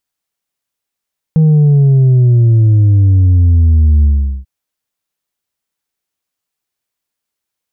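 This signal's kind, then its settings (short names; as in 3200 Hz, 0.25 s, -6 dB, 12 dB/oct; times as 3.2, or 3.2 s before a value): sub drop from 160 Hz, over 3.09 s, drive 3 dB, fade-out 0.41 s, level -5.5 dB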